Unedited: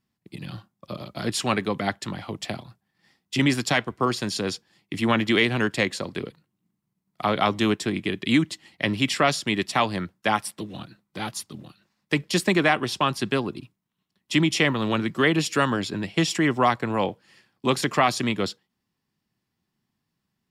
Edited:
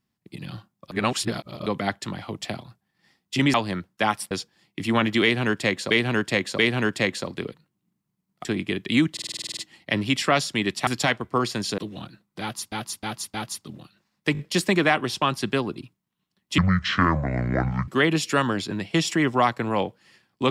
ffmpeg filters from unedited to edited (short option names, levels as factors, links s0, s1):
-filter_complex "[0:a]asplit=27[s0][s1][s2][s3][s4][s5][s6][s7][s8][s9][s10][s11][s12][s13][s14][s15][s16][s17][s18][s19][s20][s21][s22][s23][s24][s25][s26];[s0]atrim=end=0.912[s27];[s1]atrim=start=0.908:end=1.662,asetpts=PTS-STARTPTS,areverse[s28];[s2]atrim=start=1.658:end=3.542[s29];[s3]atrim=start=9.788:end=10.562[s30];[s4]atrim=start=4.448:end=6.052[s31];[s5]atrim=start=5.368:end=6.052[s32];[s6]atrim=start=5.368:end=7.232[s33];[s7]atrim=start=7.818:end=8.542[s34];[s8]atrim=start=8.488:end=8.542[s35];[s9]atrim=start=8.488:end=8.542[s36];[s10]atrim=start=8.488:end=8.542[s37];[s11]atrim=start=8.488:end=8.542[s38];[s12]atrim=start=8.488:end=8.542[s39];[s13]atrim=start=8.488:end=8.542[s40];[s14]atrim=start=8.488:end=8.542[s41];[s15]atrim=start=8.488:end=8.542[s42];[s16]atrim=start=8.488:end=9.792[s43];[s17]atrim=start=3.538:end=4.452[s44];[s18]atrim=start=10.558:end=11.502[s45];[s19]atrim=start=11.188:end=11.502[s46];[s20]atrim=start=11.188:end=11.502[s47];[s21]atrim=start=11.188:end=12.202[s48];[s22]atrim=start=12.178:end=12.202[s49];[s23]atrim=start=12.178:end=12.202[s50];[s24]atrim=start=12.178:end=14.374[s51];[s25]atrim=start=14.37:end=15.11,asetpts=PTS-STARTPTS,asetrate=25137,aresample=44100[s52];[s26]atrim=start=15.106[s53];[s27][s28]acrossfade=d=0.004:c1=hsin:c2=hsin[s54];[s54][s29]acrossfade=d=0.004:c1=hsin:c2=hsin[s55];[s55][s30]acrossfade=d=0.004:c1=hsin:c2=hsin[s56];[s56][s31]acrossfade=d=0.004:c1=hsin:c2=hsin[s57];[s57][s32]acrossfade=d=0.004:c1=hsin:c2=hsin[s58];[s58][s33]acrossfade=d=0.004:c1=hsin:c2=hsin[s59];[s59][s34]acrossfade=d=0.004:c1=hsin:c2=hsin[s60];[s60][s35]acrossfade=d=0.004:c1=hsin:c2=hsin[s61];[s61][s36]acrossfade=d=0.004:c1=hsin:c2=hsin[s62];[s62][s37]acrossfade=d=0.004:c1=hsin:c2=hsin[s63];[s63][s38]acrossfade=d=0.004:c1=hsin:c2=hsin[s64];[s64][s39]acrossfade=d=0.004:c1=hsin:c2=hsin[s65];[s65][s40]acrossfade=d=0.004:c1=hsin:c2=hsin[s66];[s66][s41]acrossfade=d=0.004:c1=hsin:c2=hsin[s67];[s67][s42]acrossfade=d=0.004:c1=hsin:c2=hsin[s68];[s68][s43]acrossfade=d=0.004:c1=hsin:c2=hsin[s69];[s69][s44]acrossfade=d=0.004:c1=hsin:c2=hsin[s70];[s70][s45]acrossfade=d=0.004:c1=hsin:c2=hsin[s71];[s71][s46]acrossfade=d=0.004:c1=hsin:c2=hsin[s72];[s72][s47]acrossfade=d=0.004:c1=hsin:c2=hsin[s73];[s73][s48]acrossfade=d=0.004:c1=hsin:c2=hsin[s74];[s74][s49]acrossfade=d=0.004:c1=hsin:c2=hsin[s75];[s75][s50]acrossfade=d=0.004:c1=hsin:c2=hsin[s76];[s76][s51]acrossfade=d=0.004:c1=hsin:c2=hsin[s77];[s77][s52]acrossfade=d=0.004:c1=hsin:c2=hsin[s78];[s78][s53]acrossfade=d=0.004:c1=hsin:c2=hsin"